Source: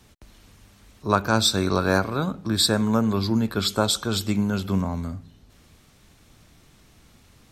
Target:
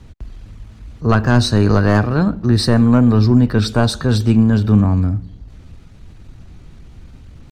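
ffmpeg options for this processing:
-af "asoftclip=type=tanh:threshold=-12.5dB,aemphasis=mode=reproduction:type=bsi,asetrate=48091,aresample=44100,atempo=0.917004,volume=5.5dB"

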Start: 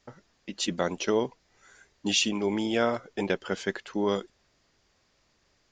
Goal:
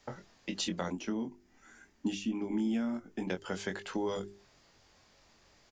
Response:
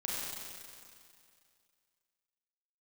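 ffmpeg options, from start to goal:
-filter_complex "[0:a]equalizer=f=840:w=3.5:g=3.5,bandreject=f=50:t=h:w=6,bandreject=f=100:t=h:w=6,bandreject=f=150:t=h:w=6,bandreject=f=200:t=h:w=6,bandreject=f=250:t=h:w=6,bandreject=f=300:t=h:w=6,bandreject=f=350:t=h:w=6,bandreject=f=400:t=h:w=6,asplit=2[a][b];[b]adelay=22,volume=-6dB[c];[a][c]amix=inputs=2:normalize=0,acrossover=split=200|7400[d][e][f];[d]acompressor=threshold=-45dB:ratio=4[g];[e]acompressor=threshold=-39dB:ratio=4[h];[f]acompressor=threshold=-58dB:ratio=4[i];[g][h][i]amix=inputs=3:normalize=0,asplit=3[j][k][l];[j]afade=t=out:st=0.91:d=0.02[m];[k]equalizer=f=125:t=o:w=1:g=-11,equalizer=f=250:t=o:w=1:g=11,equalizer=f=500:t=o:w=1:g=-11,equalizer=f=1k:t=o:w=1:g=-5,equalizer=f=2k:t=o:w=1:g=-3,equalizer=f=4k:t=o:w=1:g=-10,equalizer=f=8k:t=o:w=1:g=-6,afade=t=in:st=0.91:d=0.02,afade=t=out:st=3.29:d=0.02[n];[l]afade=t=in:st=3.29:d=0.02[o];[m][n][o]amix=inputs=3:normalize=0,volume=3.5dB"

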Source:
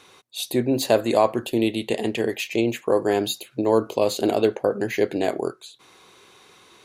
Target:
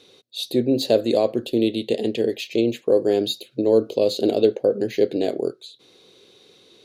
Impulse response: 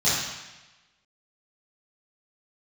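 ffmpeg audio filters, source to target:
-af "equalizer=f=125:t=o:w=1:g=4,equalizer=f=250:t=o:w=1:g=6,equalizer=f=500:t=o:w=1:g=11,equalizer=f=1k:t=o:w=1:g=-10,equalizer=f=2k:t=o:w=1:g=-3,equalizer=f=4k:t=o:w=1:g=11,equalizer=f=8k:t=o:w=1:g=-3,volume=-6.5dB"

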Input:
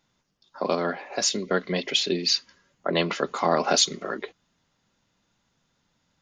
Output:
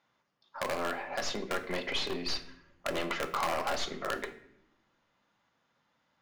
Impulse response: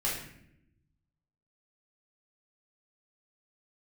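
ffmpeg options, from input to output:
-filter_complex "[0:a]highpass=f=270:p=1,aeval=exprs='(tanh(15.8*val(0)+0.4)-tanh(0.4))/15.8':c=same,lowpass=1.3k,acompressor=threshold=-31dB:ratio=4,bandreject=f=50:t=h:w=6,bandreject=f=100:t=h:w=6,bandreject=f=150:t=h:w=6,bandreject=f=200:t=h:w=6,bandreject=f=250:t=h:w=6,bandreject=f=300:t=h:w=6,bandreject=f=350:t=h:w=6,bandreject=f=400:t=h:w=6,bandreject=f=450:t=h:w=6,aeval=exprs='0.0422*(abs(mod(val(0)/0.0422+3,4)-2)-1)':c=same,crystalizer=i=10:c=0,asplit=2[a][b];[1:a]atrim=start_sample=2205[c];[b][c]afir=irnorm=-1:irlink=0,volume=-13.5dB[d];[a][d]amix=inputs=2:normalize=0,volume=-2dB"

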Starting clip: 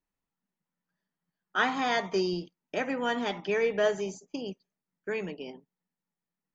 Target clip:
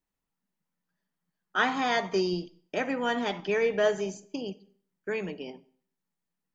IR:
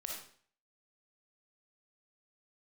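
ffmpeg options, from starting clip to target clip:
-filter_complex "[0:a]asplit=2[a][b];[1:a]atrim=start_sample=2205,lowshelf=f=330:g=6.5[c];[b][c]afir=irnorm=-1:irlink=0,volume=-15.5dB[d];[a][d]amix=inputs=2:normalize=0"

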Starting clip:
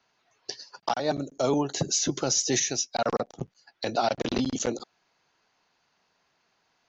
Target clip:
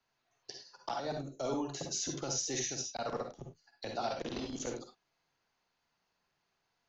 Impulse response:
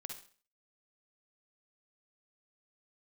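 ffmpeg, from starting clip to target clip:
-filter_complex "[0:a]lowshelf=f=86:g=12,acrossover=split=270|1600[a][b][c];[a]asoftclip=type=tanh:threshold=-32.5dB[d];[d][b][c]amix=inputs=3:normalize=0[e];[1:a]atrim=start_sample=2205,afade=t=out:st=0.16:d=0.01,atrim=end_sample=7497[f];[e][f]afir=irnorm=-1:irlink=0,volume=-6.5dB"

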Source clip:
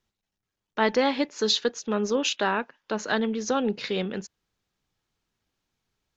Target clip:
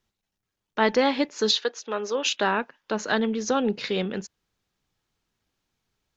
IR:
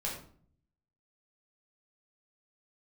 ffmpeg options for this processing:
-filter_complex "[0:a]asettb=1/sr,asplit=3[a][b][c];[a]atrim=end=1.514[d];[b]atrim=start=1.51:end=2.26,asetpts=PTS-STARTPTS,afade=t=in:d=0.004:c=qsin,afade=t=out:st=0.746:d=0.004:c=qsin,highpass=460,lowpass=5.9k[e];[c]atrim=start=2.256[f];[d][e]acrossfade=d=0.004:c1=hsin:c2=qsin[g];[g][f]acrossfade=d=0.004:c1=qsin:c2=hsin,volume=1.5dB"

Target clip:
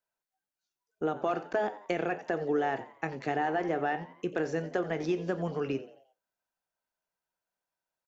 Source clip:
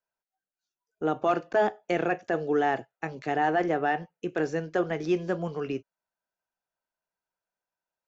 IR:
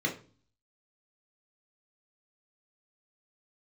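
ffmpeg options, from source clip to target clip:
-filter_complex "[0:a]acompressor=threshold=-26dB:ratio=6,asplit=5[a][b][c][d][e];[b]adelay=88,afreqshift=93,volume=-16.5dB[f];[c]adelay=176,afreqshift=186,volume=-24.2dB[g];[d]adelay=264,afreqshift=279,volume=-32dB[h];[e]adelay=352,afreqshift=372,volume=-39.7dB[i];[a][f][g][h][i]amix=inputs=5:normalize=0,asplit=2[j][k];[1:a]atrim=start_sample=2205,afade=t=out:st=0.28:d=0.01,atrim=end_sample=12789,adelay=27[l];[k][l]afir=irnorm=-1:irlink=0,volume=-25dB[m];[j][m]amix=inputs=2:normalize=0"

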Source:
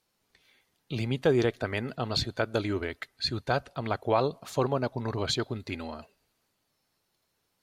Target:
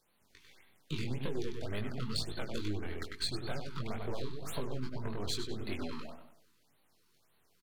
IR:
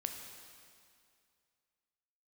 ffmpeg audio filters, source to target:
-filter_complex "[0:a]aeval=exprs='if(lt(val(0),0),0.251*val(0),val(0))':c=same,acrossover=split=340|3000[a][b][c];[b]acompressor=threshold=-43dB:ratio=6[d];[a][d][c]amix=inputs=3:normalize=0,asplit=2[e][f];[f]adelay=97,lowpass=f=4.4k:p=1,volume=-6.5dB,asplit=2[g][h];[h]adelay=97,lowpass=f=4.4k:p=1,volume=0.41,asplit=2[i][j];[j]adelay=97,lowpass=f=4.4k:p=1,volume=0.41,asplit=2[k][l];[l]adelay=97,lowpass=f=4.4k:p=1,volume=0.41,asplit=2[m][n];[n]adelay=97,lowpass=f=4.4k:p=1,volume=0.41[o];[e][g][i][k][m][o]amix=inputs=6:normalize=0,acompressor=threshold=-39dB:ratio=5,flanger=delay=19:depth=4.9:speed=2.2,afftfilt=real='re*(1-between(b*sr/1024,590*pow(6600/590,0.5+0.5*sin(2*PI*1.8*pts/sr))/1.41,590*pow(6600/590,0.5+0.5*sin(2*PI*1.8*pts/sr))*1.41))':imag='im*(1-between(b*sr/1024,590*pow(6600/590,0.5+0.5*sin(2*PI*1.8*pts/sr))/1.41,590*pow(6600/590,0.5+0.5*sin(2*PI*1.8*pts/sr))*1.41))':win_size=1024:overlap=0.75,volume=9dB"

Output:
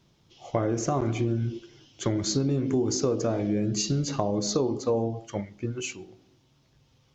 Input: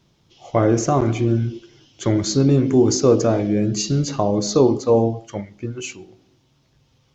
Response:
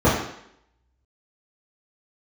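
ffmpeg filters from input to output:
-af "acompressor=threshold=-19dB:ratio=6,volume=-3dB"

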